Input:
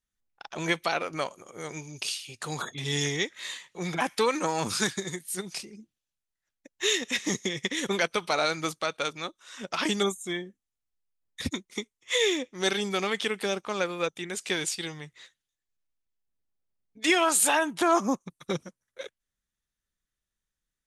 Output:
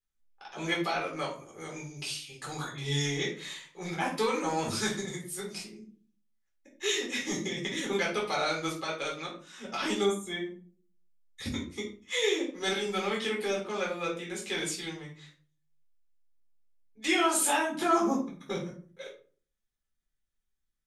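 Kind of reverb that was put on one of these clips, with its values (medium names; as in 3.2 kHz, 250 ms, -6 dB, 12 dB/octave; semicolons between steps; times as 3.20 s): simulated room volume 310 m³, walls furnished, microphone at 4 m; trim -10 dB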